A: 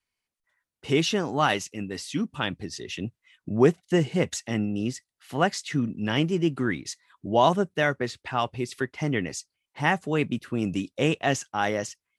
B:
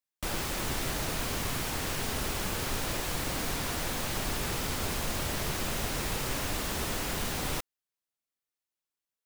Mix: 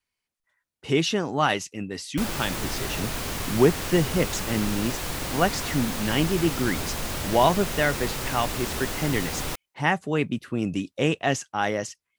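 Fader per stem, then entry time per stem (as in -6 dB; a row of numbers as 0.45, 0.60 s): +0.5, +2.0 dB; 0.00, 1.95 s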